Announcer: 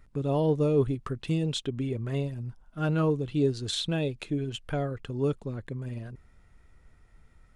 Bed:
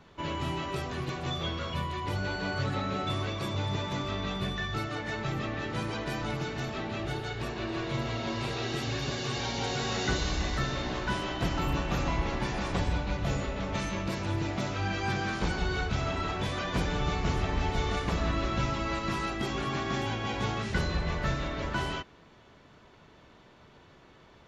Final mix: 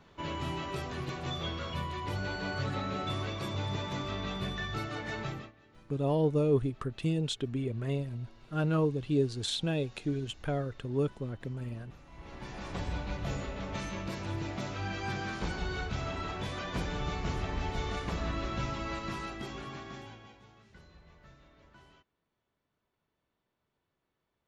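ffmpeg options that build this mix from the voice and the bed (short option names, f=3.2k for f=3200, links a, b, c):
-filter_complex "[0:a]adelay=5750,volume=-2.5dB[a];[1:a]volume=18.5dB,afade=t=out:st=5.23:d=0.29:silence=0.0668344,afade=t=in:st=12.1:d=0.92:silence=0.0841395,afade=t=out:st=18.93:d=1.48:silence=0.0794328[b];[a][b]amix=inputs=2:normalize=0"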